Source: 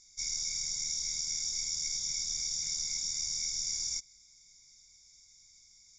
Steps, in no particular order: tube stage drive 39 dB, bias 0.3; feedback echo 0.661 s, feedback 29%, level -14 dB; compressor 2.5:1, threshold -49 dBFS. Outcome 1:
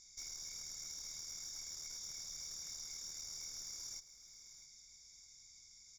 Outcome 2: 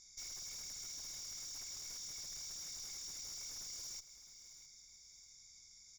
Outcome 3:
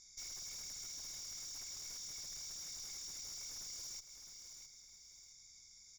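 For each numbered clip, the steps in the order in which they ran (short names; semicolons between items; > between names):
compressor > tube stage > feedback echo; tube stage > compressor > feedback echo; tube stage > feedback echo > compressor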